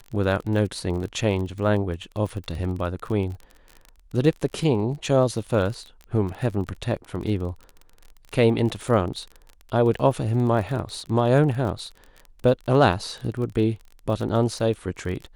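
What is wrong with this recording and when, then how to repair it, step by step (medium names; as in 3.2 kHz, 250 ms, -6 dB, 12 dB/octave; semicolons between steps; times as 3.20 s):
crackle 33 per s -31 dBFS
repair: de-click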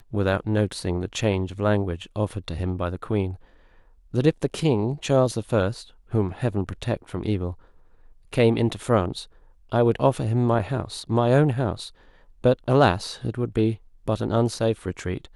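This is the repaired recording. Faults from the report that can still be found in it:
nothing left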